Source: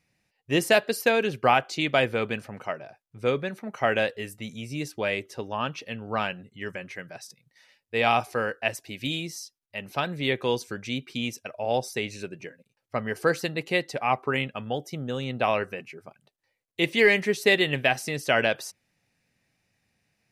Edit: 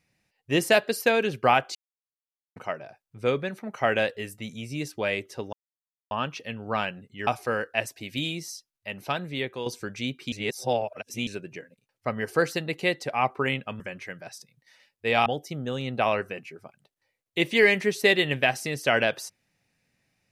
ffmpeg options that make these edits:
ffmpeg -i in.wav -filter_complex "[0:a]asplit=10[link_01][link_02][link_03][link_04][link_05][link_06][link_07][link_08][link_09][link_10];[link_01]atrim=end=1.75,asetpts=PTS-STARTPTS,afade=type=out:start_time=1.746:duration=0.004:curve=hsin[link_11];[link_02]atrim=start=1.75:end=2.56,asetpts=PTS-STARTPTS,volume=0[link_12];[link_03]atrim=start=2.56:end=5.53,asetpts=PTS-STARTPTS,afade=type=in:duration=0.004:curve=hsin,afade=type=out:start_time=2.966:duration=0.004:curve=hsin,apad=pad_dur=0.58[link_13];[link_04]atrim=start=5.53:end=6.692,asetpts=PTS-STARTPTS,afade=type=in:duration=0.004:curve=hsin[link_14];[link_05]atrim=start=8.148:end=10.54,asetpts=PTS-STARTPTS,afade=type=out:start_time=1.742:duration=0.65:silence=0.334965[link_15];[link_06]atrim=start=10.54:end=11.202,asetpts=PTS-STARTPTS,afade=type=in:duration=0.004:curve=hsin:silence=0.334965[link_16];[link_07]atrim=start=11.198:end=12.152,asetpts=PTS-STARTPTS,areverse[link_17];[link_08]atrim=start=12.148:end=14.682[link_18];[link_09]atrim=start=6.688:end=8.152[link_19];[link_10]atrim=start=14.678[link_20];[link_11][link_12][link_13][link_14]concat=n=4:v=0:a=1[link_21];[link_15][link_16]concat=n=2:v=0:a=1[link_22];[link_21][link_22]acrossfade=duration=0.004:curve1=hsin:curve2=hsin[link_23];[link_23][link_17]acrossfade=duration=0.004:curve1=hsin:curve2=hsin[link_24];[link_24][link_18]acrossfade=duration=0.004:curve1=hsin:curve2=hsin[link_25];[link_25][link_19]acrossfade=duration=0.004:curve1=hsin:curve2=hsin[link_26];[link_26][link_20]acrossfade=duration=0.004:curve1=hsin:curve2=hsin" out.wav

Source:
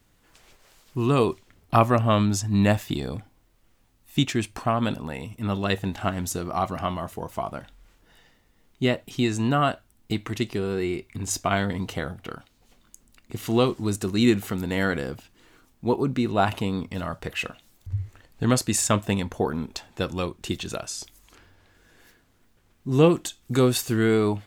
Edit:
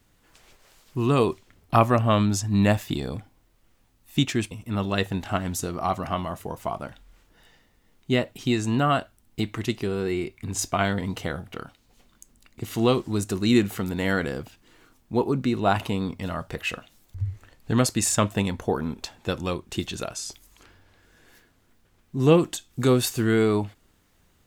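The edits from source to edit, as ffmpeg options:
ffmpeg -i in.wav -filter_complex "[0:a]asplit=2[link_01][link_02];[link_01]atrim=end=4.512[link_03];[link_02]atrim=start=5.228[link_04];[link_03][link_04]acrossfade=duration=0.004:curve1=hsin:curve2=hsin" out.wav

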